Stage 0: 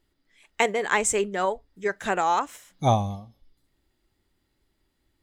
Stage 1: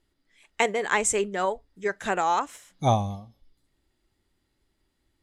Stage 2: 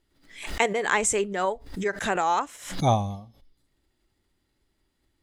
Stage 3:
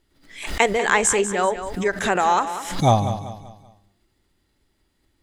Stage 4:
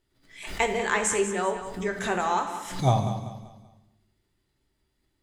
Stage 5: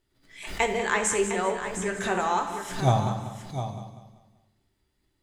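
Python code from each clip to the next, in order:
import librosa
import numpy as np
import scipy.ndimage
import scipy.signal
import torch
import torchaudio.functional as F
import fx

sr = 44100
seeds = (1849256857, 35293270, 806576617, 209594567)

y1 = scipy.signal.sosfilt(scipy.signal.cheby1(2, 1.0, 11000.0, 'lowpass', fs=sr, output='sos'), x)
y2 = fx.pre_swell(y1, sr, db_per_s=100.0)
y3 = fx.echo_feedback(y2, sr, ms=193, feedback_pct=38, wet_db=-11)
y3 = y3 * 10.0 ** (5.0 / 20.0)
y4 = fx.rev_fdn(y3, sr, rt60_s=0.81, lf_ratio=1.55, hf_ratio=0.9, size_ms=46.0, drr_db=4.5)
y4 = y4 * 10.0 ** (-8.0 / 20.0)
y5 = y4 + 10.0 ** (-10.0 / 20.0) * np.pad(y4, (int(706 * sr / 1000.0), 0))[:len(y4)]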